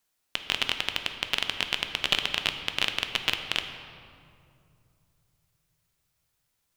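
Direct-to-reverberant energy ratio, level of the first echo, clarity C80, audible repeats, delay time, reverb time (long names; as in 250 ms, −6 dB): 6.0 dB, no echo audible, 8.5 dB, no echo audible, no echo audible, 2.4 s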